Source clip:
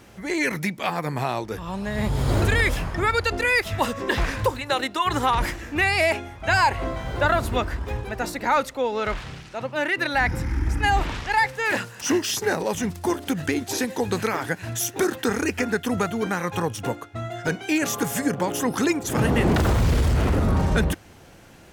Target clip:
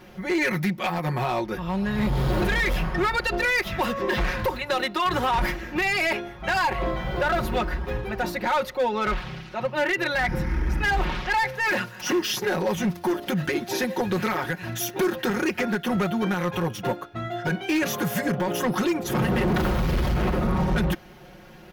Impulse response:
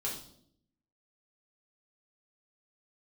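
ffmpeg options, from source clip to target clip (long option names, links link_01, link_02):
-filter_complex "[0:a]equalizer=frequency=8100:width=1.4:gain=-14,aecho=1:1:5.5:0.87,acrossover=split=7700[link_01][link_02];[link_01]alimiter=limit=-13dB:level=0:latency=1:release=55[link_03];[link_03][link_02]amix=inputs=2:normalize=0,asoftclip=type=hard:threshold=-18.5dB"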